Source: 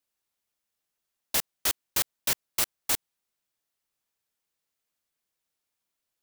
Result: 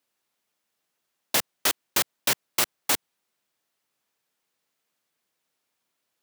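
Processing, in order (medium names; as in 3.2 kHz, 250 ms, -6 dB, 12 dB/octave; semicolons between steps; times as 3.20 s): high-pass 140 Hz; treble shelf 4.6 kHz -6 dB; compression, threshold -26 dBFS, peak gain reduction 2.5 dB; trim +8.5 dB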